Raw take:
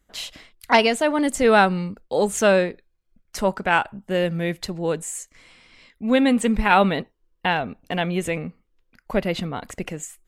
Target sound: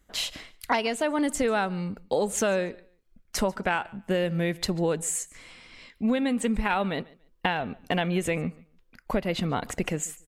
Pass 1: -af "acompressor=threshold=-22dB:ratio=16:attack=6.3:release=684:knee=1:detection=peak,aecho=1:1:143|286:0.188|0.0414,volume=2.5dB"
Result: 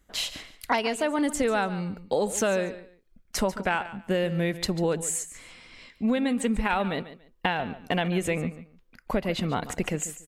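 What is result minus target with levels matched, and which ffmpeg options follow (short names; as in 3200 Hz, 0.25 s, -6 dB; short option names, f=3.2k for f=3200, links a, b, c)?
echo-to-direct +9 dB
-af "acompressor=threshold=-22dB:ratio=16:attack=6.3:release=684:knee=1:detection=peak,aecho=1:1:143|286:0.0668|0.0147,volume=2.5dB"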